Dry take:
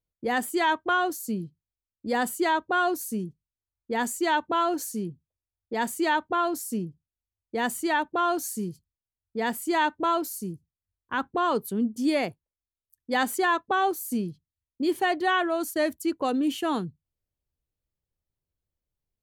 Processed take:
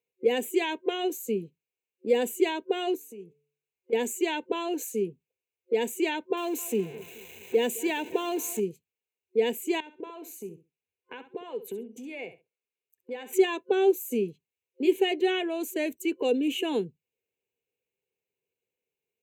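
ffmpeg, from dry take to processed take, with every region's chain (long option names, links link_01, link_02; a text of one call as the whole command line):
ffmpeg -i in.wav -filter_complex "[0:a]asettb=1/sr,asplit=3[link_01][link_02][link_03];[link_01]atrim=end=2.954[link_04];[link_02]atrim=start=2.95:end=3.93,asetpts=PTS-STARTPTS,afade=type=in:duration=0.004:curve=qsin,afade=type=out:start_time=0.976:duration=0.004:curve=qsin,acompressor=threshold=-42dB:ratio=12:attack=3.2:release=140:knee=1:detection=peak,bandreject=frequency=145:width_type=h:width=4,bandreject=frequency=290:width_type=h:width=4,bandreject=frequency=435:width_type=h:width=4,bandreject=frequency=580:width_type=h:width=4,bandreject=frequency=725:width_type=h:width=4,bandreject=frequency=870:width_type=h:width=4,bandreject=frequency=1015:width_type=h:width=4,bandreject=frequency=1160:width_type=h:width=4,bandreject=frequency=1305:width_type=h:width=4,bandreject=frequency=1450:width_type=h:width=4,bandreject=frequency=1595:width_type=h:width=4,bandreject=frequency=1740:width_type=h:width=4,bandreject=frequency=1885:width_type=h:width=4,bandreject=frequency=2030:width_type=h:width=4,bandreject=frequency=2175:width_type=h:width=4,bandreject=frequency=2320:width_type=h:width=4,bandreject=frequency=2465:width_type=h:width=4,bandreject=frequency=2610:width_type=h:width=4[link_05];[link_03]atrim=start=3.926[link_06];[link_04][link_05]acrossfade=duration=0.004:curve1=hsin:curve2=qsin[link_07];[link_07][link_06]acrossfade=duration=0.004:curve1=qsin:curve2=hsin,asettb=1/sr,asplit=3[link_08][link_09][link_10];[link_08]atrim=end=6.374[link_11];[link_09]atrim=start=6.37:end=8.6,asetpts=PTS-STARTPTS,afade=type=in:duration=0.004:curve=qsin,afade=type=out:start_time=2.226:duration=0.004:curve=qsin,aeval=exprs='val(0)+0.5*0.0141*sgn(val(0))':channel_layout=same,asplit=2[link_12][link_13];[link_13]adelay=212,lowpass=frequency=2000:poles=1,volume=-21dB,asplit=2[link_14][link_15];[link_15]adelay=212,lowpass=frequency=2000:poles=1,volume=0.54,asplit=2[link_16][link_17];[link_17]adelay=212,lowpass=frequency=2000:poles=1,volume=0.54,asplit=2[link_18][link_19];[link_19]adelay=212,lowpass=frequency=2000:poles=1,volume=0.54[link_20];[link_12][link_14][link_16][link_18][link_20]amix=inputs=5:normalize=0,atrim=end_sample=98343[link_21];[link_10]atrim=start=8.596[link_22];[link_11][link_21]acrossfade=duration=0.004:curve1=hsin:curve2=qsin[link_23];[link_23][link_22]acrossfade=duration=0.004:curve1=qsin:curve2=hsin,asettb=1/sr,asplit=3[link_24][link_25][link_26];[link_24]atrim=end=9.804[link_27];[link_25]atrim=start=9.8:end=13.33,asetpts=PTS-STARTPTS,afade=type=in:duration=0.004:curve=qsin,afade=type=out:start_time=3.526:duration=0.004:curve=qsin,highshelf=frequency=6000:gain=-6.5,acompressor=threshold=-37dB:ratio=10:attack=3.2:release=140:knee=1:detection=peak,aecho=1:1:66|132:0.224|0.0381,atrim=end_sample=155673[link_28];[link_26]atrim=start=13.326[link_29];[link_27][link_28]acrossfade=duration=0.004:curve1=hsin:curve2=qsin[link_30];[link_30][link_29]acrossfade=duration=0.004:curve1=qsin:curve2=hsin,superequalizer=7b=3.98:10b=0.282:12b=3.55:14b=0.251:16b=0.501,acrossover=split=480|3000[link_31][link_32][link_33];[link_32]acompressor=threshold=-40dB:ratio=2.5[link_34];[link_31][link_34][link_33]amix=inputs=3:normalize=0,highpass=230" out.wav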